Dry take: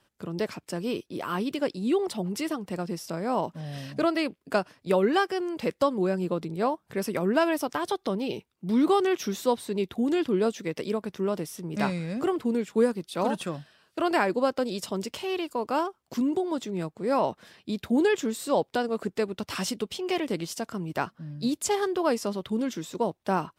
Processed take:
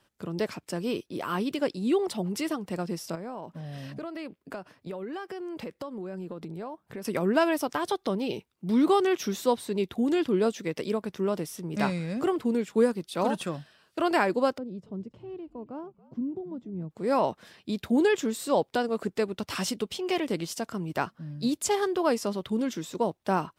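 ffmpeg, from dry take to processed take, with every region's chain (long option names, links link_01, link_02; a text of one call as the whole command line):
ffmpeg -i in.wav -filter_complex "[0:a]asettb=1/sr,asplit=3[link_01][link_02][link_03];[link_01]atrim=end=3.154[link_04];[link_02]atrim=start=3.15:end=7.05,asetpts=PTS-STARTPTS,afade=type=in:duration=0.004:curve=qsin,afade=type=out:start_time=3.896:duration=0.004:curve=qsin,highpass=47,equalizer=frequency=7300:width_type=o:width=2.6:gain=-5.5,acompressor=threshold=-34dB:ratio=6:attack=3.2:release=140:knee=1:detection=peak[link_05];[link_03]atrim=start=7.046[link_06];[link_04][link_05]acrossfade=duration=0.004:curve1=hsin:curve2=qsin[link_07];[link_07][link_06]acrossfade=duration=0.004:curve1=qsin:curve2=hsin,asettb=1/sr,asplit=3[link_08][link_09][link_10];[link_08]atrim=end=14.584[link_11];[link_09]atrim=start=14.58:end=16.91,asetpts=PTS-STARTPTS,afade=type=in:duration=0.004:curve=qsin,afade=type=out:start_time=2.326:duration=0.004:curve=qsin,bandpass=frequency=130:width_type=q:width=1.1,asplit=3[link_12][link_13][link_14];[link_13]adelay=278,afreqshift=-72,volume=-20dB[link_15];[link_14]adelay=556,afreqshift=-144,volume=-30.2dB[link_16];[link_12][link_15][link_16]amix=inputs=3:normalize=0,atrim=end_sample=102753[link_17];[link_10]atrim=start=16.906[link_18];[link_11][link_17]acrossfade=duration=0.004:curve1=hsin:curve2=qsin[link_19];[link_19][link_18]acrossfade=duration=0.004:curve1=qsin:curve2=hsin" out.wav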